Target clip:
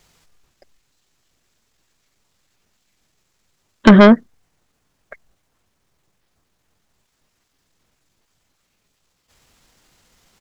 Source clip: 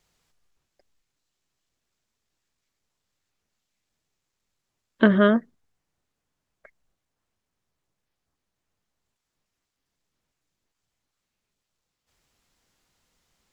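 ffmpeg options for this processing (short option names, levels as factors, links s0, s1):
-af "aeval=exprs='0.668*(cos(1*acos(clip(val(0)/0.668,-1,1)))-cos(1*PI/2))+0.237*(cos(5*acos(clip(val(0)/0.668,-1,1)))-cos(5*PI/2))':c=same,atempo=1.3,volume=1.78"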